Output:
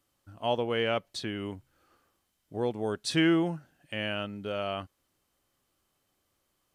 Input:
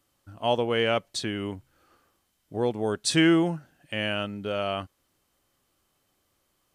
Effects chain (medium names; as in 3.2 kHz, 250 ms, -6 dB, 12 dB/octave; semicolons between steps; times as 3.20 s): dynamic bell 7.8 kHz, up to -7 dB, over -50 dBFS, Q 1.4; trim -4 dB